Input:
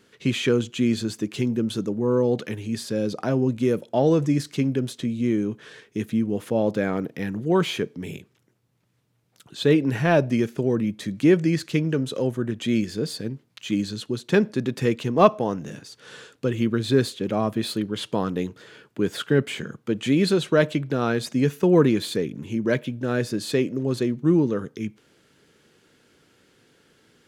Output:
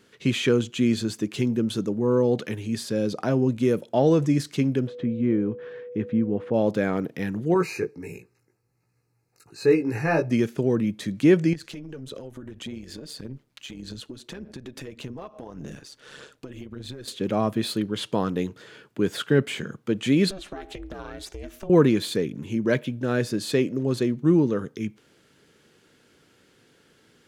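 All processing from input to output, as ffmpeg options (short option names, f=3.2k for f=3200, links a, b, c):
-filter_complex "[0:a]asettb=1/sr,asplit=3[a][b][c];[a]atrim=end=4.874[d];[b]atrim=start=4.87:end=6.54,asetpts=PTS-STARTPTS,afade=t=in:d=0.004:c=qsin,afade=t=out:st=1.666:d=0.004:c=qsin,lowpass=1.8k,aeval=exprs='val(0)+0.0158*sin(2*PI*490*n/s)':c=same[e];[c]atrim=start=6.536[f];[d][e]acrossfade=d=0.004:c1=hsin:c2=qsin[g];[g][f]acrossfade=d=0.004:c1=qsin:c2=hsin,asettb=1/sr,asplit=3[h][i][j];[h]atrim=end=7.544[k];[i]atrim=start=7.54:end=10.31,asetpts=PTS-STARTPTS,afade=t=in:d=0.004:c=qsin,afade=t=out:st=2.766:d=0.004:c=qsin,aecho=1:1:2.4:0.46,atrim=end_sample=122157,flanger=delay=16.5:depth=2.5:speed=1.4,asuperstop=centerf=3300:order=12:qfactor=2.9[l];[j]atrim=start=10.306[m];[k][l]acrossfade=d=0.004:c1=hsin:c2=qsin[n];[n][m]acrossfade=d=0.004:c1=qsin:c2=hsin,asettb=1/sr,asplit=3[o][p][q];[o]atrim=end=11.534[r];[p]atrim=start=11.53:end=17.08,asetpts=PTS-STARTPTS,afade=t=in:d=0.004:c=qsin,afade=t=out:st=5.546:d=0.004:c=qsin,tremolo=f=140:d=0.621,acompressor=threshold=-34dB:ratio=12:attack=3.2:release=140:knee=1:detection=peak,aphaser=in_gain=1:out_gain=1:delay=3.6:decay=0.33:speed=1.7:type=sinusoidal[s];[q]atrim=start=17.076[t];[r][s]acrossfade=d=0.004:c1=hsin:c2=qsin[u];[u][t]acrossfade=d=0.004:c1=qsin:c2=hsin,asettb=1/sr,asplit=3[v][w][x];[v]atrim=end=20.304[y];[w]atrim=start=20.3:end=21.7,asetpts=PTS-STARTPTS,afade=t=in:d=0.004:c=qsin,afade=t=out:st=1.396:d=0.004:c=qsin,equalizer=f=300:t=o:w=0.29:g=-10,aeval=exprs='val(0)*sin(2*PI*190*n/s)':c=same,acompressor=threshold=-32dB:ratio=10:attack=3.2:release=140:knee=1:detection=peak[z];[x]atrim=start=21.696[aa];[y][z]acrossfade=d=0.004:c1=hsin:c2=qsin[ab];[ab][aa]acrossfade=d=0.004:c1=qsin:c2=hsin"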